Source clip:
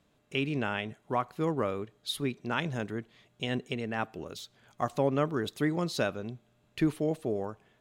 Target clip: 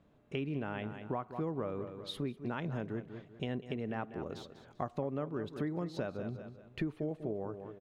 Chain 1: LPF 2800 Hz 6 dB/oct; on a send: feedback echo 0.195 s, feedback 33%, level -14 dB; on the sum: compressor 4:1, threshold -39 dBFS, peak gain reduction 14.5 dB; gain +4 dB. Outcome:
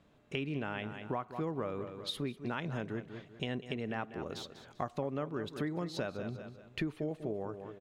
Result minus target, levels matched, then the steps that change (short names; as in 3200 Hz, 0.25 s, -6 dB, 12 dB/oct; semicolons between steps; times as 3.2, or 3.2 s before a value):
2000 Hz band +3.5 dB
change: LPF 960 Hz 6 dB/oct